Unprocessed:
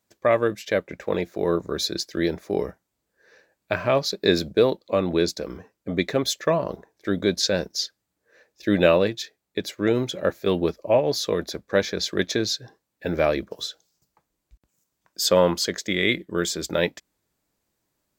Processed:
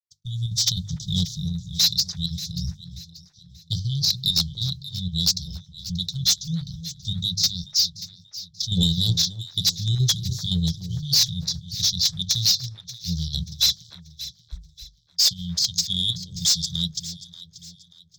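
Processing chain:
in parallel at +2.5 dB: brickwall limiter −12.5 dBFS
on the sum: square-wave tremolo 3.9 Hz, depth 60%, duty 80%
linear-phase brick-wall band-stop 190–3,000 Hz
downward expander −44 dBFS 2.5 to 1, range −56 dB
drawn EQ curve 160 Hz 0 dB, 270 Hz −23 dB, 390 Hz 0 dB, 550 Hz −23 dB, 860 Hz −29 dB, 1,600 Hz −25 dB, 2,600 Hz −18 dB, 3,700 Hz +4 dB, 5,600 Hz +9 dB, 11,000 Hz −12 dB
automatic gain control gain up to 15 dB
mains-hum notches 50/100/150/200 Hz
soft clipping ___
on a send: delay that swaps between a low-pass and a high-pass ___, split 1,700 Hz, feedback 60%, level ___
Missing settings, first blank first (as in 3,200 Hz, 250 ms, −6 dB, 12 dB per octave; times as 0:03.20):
−13 dBFS, 292 ms, −11 dB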